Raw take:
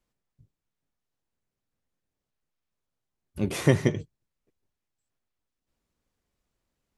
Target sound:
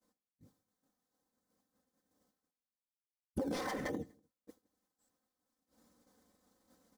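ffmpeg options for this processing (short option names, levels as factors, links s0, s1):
-filter_complex "[0:a]afwtdn=0.0141,afftfilt=real='re*lt(hypot(re,im),0.178)':imag='im*lt(hypot(re,im),0.178)':win_size=1024:overlap=0.75,areverse,acompressor=mode=upward:threshold=0.00562:ratio=2.5,areverse,asoftclip=type=hard:threshold=0.0299,highpass=140,asplit=2[s0][s1];[s1]acrusher=samples=18:mix=1:aa=0.000001:lfo=1:lforange=10.8:lforate=3.2,volume=0.299[s2];[s0][s2]amix=inputs=2:normalize=0,aecho=1:1:3.9:0.84,acompressor=threshold=0.00501:ratio=12,agate=range=0.0224:threshold=0.00141:ratio=3:detection=peak,equalizer=f=2600:w=2.1:g=-13,aecho=1:1:81|162|243:0.0708|0.0347|0.017,volume=3.98"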